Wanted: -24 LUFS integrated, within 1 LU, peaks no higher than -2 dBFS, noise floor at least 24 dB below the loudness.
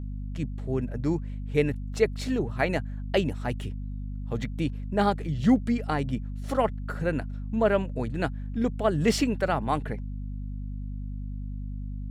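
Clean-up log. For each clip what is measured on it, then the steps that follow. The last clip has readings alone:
hum 50 Hz; highest harmonic 250 Hz; hum level -31 dBFS; loudness -29.0 LUFS; peak level -9.5 dBFS; loudness target -24.0 LUFS
-> de-hum 50 Hz, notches 5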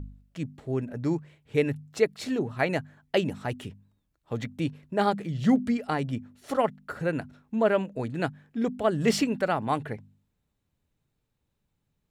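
hum not found; loudness -28.5 LUFS; peak level -9.5 dBFS; loudness target -24.0 LUFS
-> trim +4.5 dB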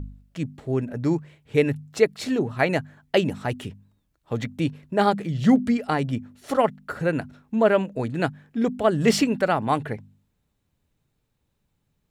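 loudness -24.0 LUFS; peak level -5.0 dBFS; noise floor -74 dBFS

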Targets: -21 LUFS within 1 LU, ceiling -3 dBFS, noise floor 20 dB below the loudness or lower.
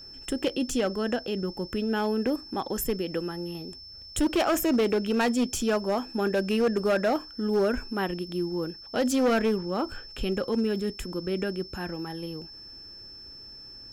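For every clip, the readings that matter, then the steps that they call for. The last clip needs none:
clipped samples 1.5%; clipping level -19.0 dBFS; steady tone 5.3 kHz; tone level -43 dBFS; loudness -28.0 LUFS; peak level -19.0 dBFS; loudness target -21.0 LUFS
-> clip repair -19 dBFS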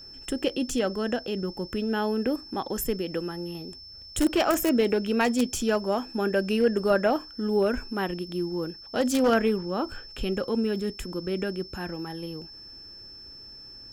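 clipped samples 0.0%; steady tone 5.3 kHz; tone level -43 dBFS
-> band-stop 5.3 kHz, Q 30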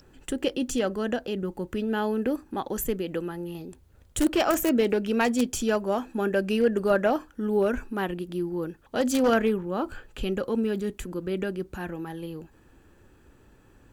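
steady tone not found; loudness -27.5 LUFS; peak level -10.0 dBFS; loudness target -21.0 LUFS
-> trim +6.5 dB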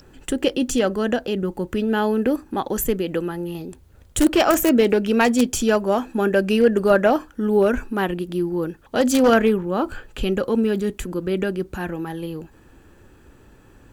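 loudness -21.0 LUFS; peak level -3.5 dBFS; noise floor -51 dBFS

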